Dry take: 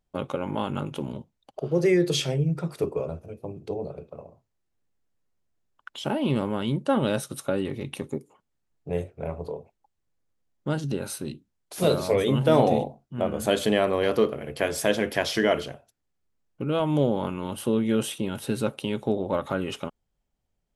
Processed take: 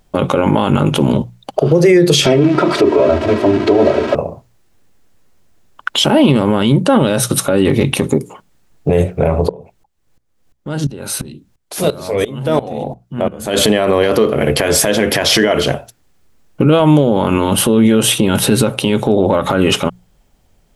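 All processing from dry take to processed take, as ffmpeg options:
ffmpeg -i in.wav -filter_complex "[0:a]asettb=1/sr,asplit=3[link_01][link_02][link_03];[link_01]atrim=end=2.264[link_04];[link_02]atrim=start=2.26:end=4.15,asetpts=PTS-STARTPTS,afade=type=in:duration=0.004:curve=qsin,afade=type=out:start_time=1.886:duration=0.004:curve=qsin,aeval=exprs='val(0)+0.5*0.0106*sgn(val(0))':channel_layout=same,highpass=140,lowpass=3600,aecho=1:1:3.1:0.94,atrim=end_sample=83349[link_05];[link_03]atrim=start=4.146[link_06];[link_04][link_05]acrossfade=duration=0.004:curve1=hsin:curve2=qsin[link_07];[link_07][link_06]acrossfade=duration=0.004:curve1=qsin:curve2=hsin,asettb=1/sr,asplit=3[link_08][link_09][link_10];[link_08]atrim=end=9.494[link_11];[link_09]atrim=start=9.49:end=13.54,asetpts=PTS-STARTPTS,afade=type=in:duration=0.004:curve=qsin,afade=type=out:start_time=4.046:duration=0.004:curve=qsin,acompressor=threshold=-38dB:ratio=2.5:attack=3.2:release=140:knee=1:detection=peak,aeval=exprs='val(0)*pow(10,-20*if(lt(mod(-2.9*n/s,1),2*abs(-2.9)/1000),1-mod(-2.9*n/s,1)/(2*abs(-2.9)/1000),(mod(-2.9*n/s,1)-2*abs(-2.9)/1000)/(1-2*abs(-2.9)/1000))/20)':channel_layout=same[link_12];[link_10]atrim=start=13.536[link_13];[link_11][link_12]acrossfade=duration=0.004:curve1=hsin:curve2=qsin[link_14];[link_14][link_13]acrossfade=duration=0.004:curve1=qsin:curve2=hsin,bandreject=frequency=60:width_type=h:width=6,bandreject=frequency=120:width_type=h:width=6,bandreject=frequency=180:width_type=h:width=6,acompressor=threshold=-27dB:ratio=6,alimiter=level_in=25dB:limit=-1dB:release=50:level=0:latency=1,volume=-1dB" out.wav

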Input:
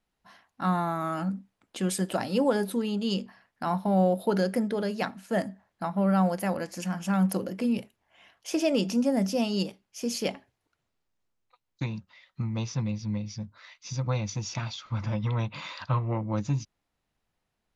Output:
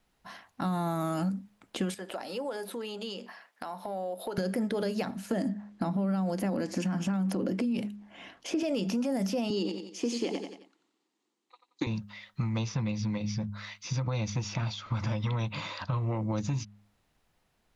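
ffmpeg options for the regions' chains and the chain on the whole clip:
ffmpeg -i in.wav -filter_complex "[0:a]asettb=1/sr,asplit=3[link_01][link_02][link_03];[link_01]atrim=end=1.944[link_04];[link_02]atrim=start=1.94:end=4.38,asetpts=PTS-STARTPTS,afade=type=in:duration=0.004:curve=qsin,afade=type=out:start_time=2.436:duration=0.004:curve=qsin,highpass=440,acompressor=threshold=-44dB:ratio=3:attack=3.2:release=140:knee=1:detection=peak[link_05];[link_03]atrim=start=4.376[link_06];[link_04][link_05]acrossfade=duration=0.004:curve1=hsin:curve2=qsin[link_07];[link_07][link_06]acrossfade=duration=0.004:curve1=qsin:curve2=hsin,asettb=1/sr,asplit=3[link_08][link_09][link_10];[link_08]atrim=end=5.324[link_11];[link_09]atrim=start=5.32:end=8.63,asetpts=PTS-STARTPTS,afade=type=in:duration=0.004:curve=qsin,afade=type=out:start_time=3.306:duration=0.004:curve=qsin,lowpass=8500,equalizer=frequency=270:width_type=o:width=1.2:gain=12.5[link_12];[link_10]atrim=start=8.626[link_13];[link_11][link_12]acrossfade=duration=0.004:curve1=hsin:curve2=qsin[link_14];[link_14][link_13]acrossfade=duration=0.004:curve1=qsin:curve2=hsin,asettb=1/sr,asplit=3[link_15][link_16][link_17];[link_15]atrim=end=9.504[link_18];[link_16]atrim=start=9.5:end=11.87,asetpts=PTS-STARTPTS,afade=type=in:duration=0.004:curve=qsin,afade=type=out:start_time=2.366:duration=0.004:curve=qsin,highpass=frequency=230:width=0.5412,highpass=frequency=230:width=1.3066,equalizer=frequency=320:width_type=q:width=4:gain=9,equalizer=frequency=610:width_type=q:width=4:gain=-10,equalizer=frequency=1500:width_type=q:width=4:gain=-8,equalizer=frequency=2400:width_type=q:width=4:gain=-4,equalizer=frequency=5500:width_type=q:width=4:gain=-4,lowpass=frequency=8500:width=0.5412,lowpass=frequency=8500:width=1.3066,aecho=1:1:89|178|267|356:0.355|0.131|0.0486|0.018,atrim=end_sample=104517[link_19];[link_17]atrim=start=11.866[link_20];[link_18][link_19]acrossfade=duration=0.004:curve1=hsin:curve2=qsin[link_21];[link_21][link_20]acrossfade=duration=0.004:curve1=qsin:curve2=hsin,bandreject=frequency=103.1:width_type=h:width=4,bandreject=frequency=206.2:width_type=h:width=4,alimiter=limit=-23dB:level=0:latency=1:release=62,acrossover=split=730|3400[link_22][link_23][link_24];[link_22]acompressor=threshold=-37dB:ratio=4[link_25];[link_23]acompressor=threshold=-50dB:ratio=4[link_26];[link_24]acompressor=threshold=-54dB:ratio=4[link_27];[link_25][link_26][link_27]amix=inputs=3:normalize=0,volume=8dB" out.wav

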